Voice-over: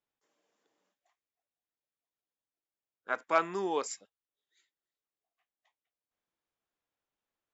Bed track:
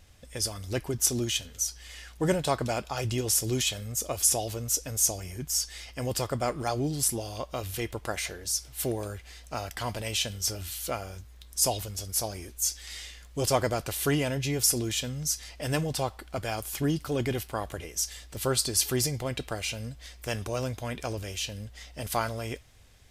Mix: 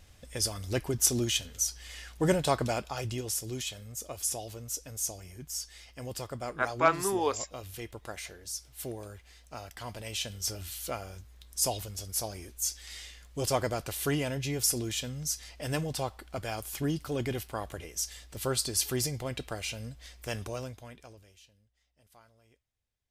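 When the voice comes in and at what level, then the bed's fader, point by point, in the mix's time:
3.50 s, +3.0 dB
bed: 0:02.62 0 dB
0:03.43 −8.5 dB
0:09.80 −8.5 dB
0:10.50 −3.5 dB
0:20.45 −3.5 dB
0:21.65 −30.5 dB

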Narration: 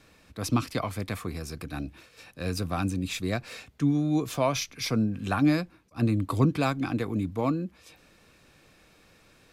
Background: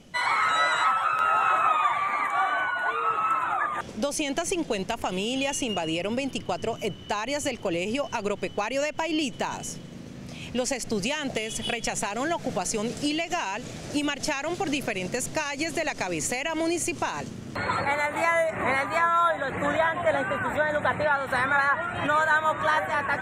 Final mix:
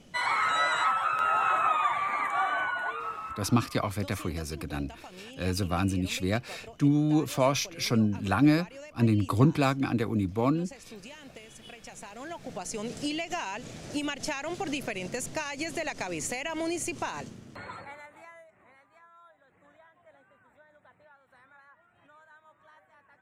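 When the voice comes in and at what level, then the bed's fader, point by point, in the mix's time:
3.00 s, +1.0 dB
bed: 0:02.74 −3 dB
0:03.51 −18.5 dB
0:11.78 −18.5 dB
0:12.96 −5 dB
0:17.20 −5 dB
0:18.68 −34.5 dB

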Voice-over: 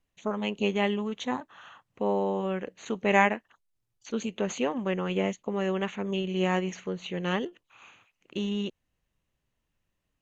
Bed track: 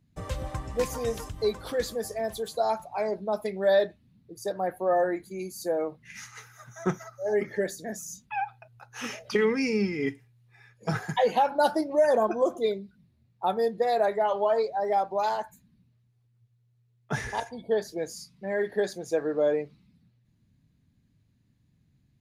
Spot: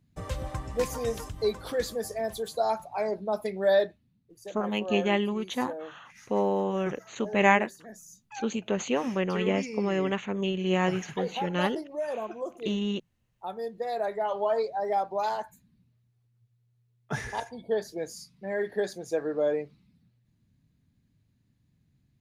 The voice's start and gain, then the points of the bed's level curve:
4.30 s, +1.0 dB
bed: 0:03.80 −0.5 dB
0:04.21 −10.5 dB
0:13.43 −10.5 dB
0:14.50 −2 dB

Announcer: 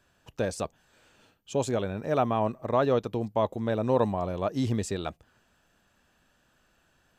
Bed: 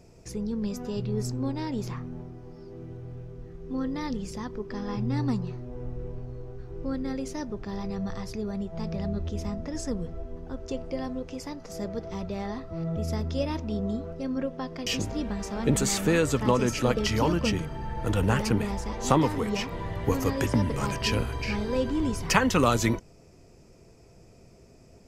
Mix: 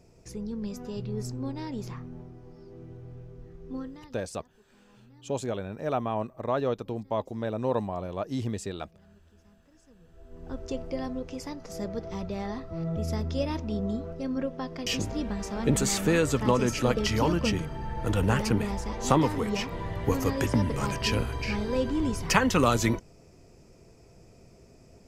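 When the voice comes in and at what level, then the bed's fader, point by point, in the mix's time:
3.75 s, −3.5 dB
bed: 0:03.75 −4 dB
0:04.27 −27.5 dB
0:09.94 −27.5 dB
0:10.49 −0.5 dB

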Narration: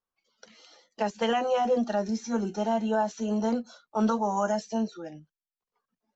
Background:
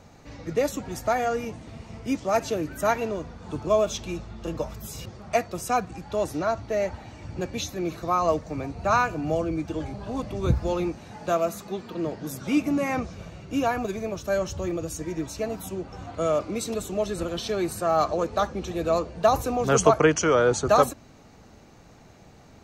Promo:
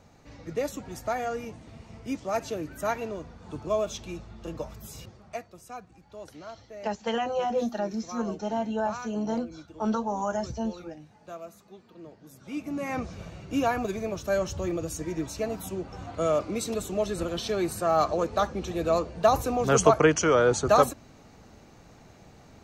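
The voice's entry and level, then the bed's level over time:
5.85 s, −2.5 dB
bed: 0:04.98 −5.5 dB
0:05.57 −17 dB
0:12.29 −17 dB
0:13.11 −1 dB

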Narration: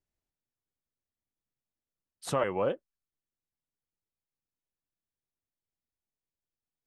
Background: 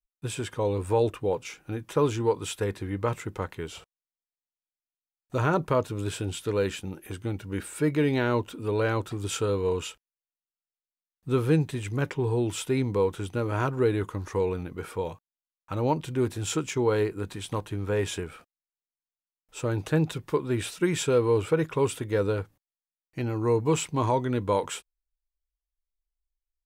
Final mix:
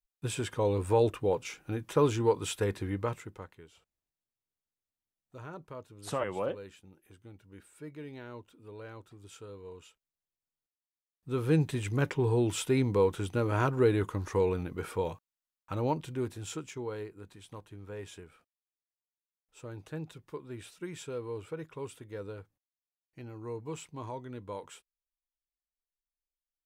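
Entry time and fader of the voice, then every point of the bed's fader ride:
3.80 s, −4.0 dB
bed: 0:02.90 −1.5 dB
0:03.71 −20 dB
0:10.79 −20 dB
0:11.64 −1 dB
0:15.45 −1 dB
0:17.10 −15.5 dB

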